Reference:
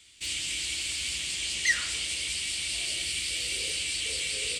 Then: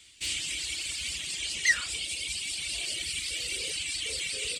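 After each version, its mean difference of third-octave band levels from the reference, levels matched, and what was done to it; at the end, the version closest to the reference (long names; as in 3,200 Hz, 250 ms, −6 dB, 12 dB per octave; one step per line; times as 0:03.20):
1.5 dB: reverb reduction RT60 2 s
level +1.5 dB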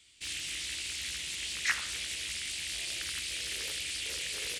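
3.0 dB: highs frequency-modulated by the lows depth 0.74 ms
level −5 dB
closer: first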